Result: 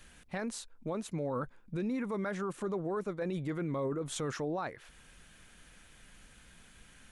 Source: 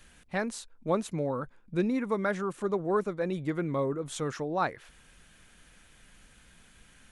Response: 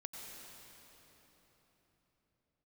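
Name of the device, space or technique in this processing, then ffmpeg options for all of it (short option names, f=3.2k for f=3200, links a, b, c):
stacked limiters: -af "alimiter=limit=-21dB:level=0:latency=1:release=383,alimiter=level_in=3.5dB:limit=-24dB:level=0:latency=1:release=11,volume=-3.5dB"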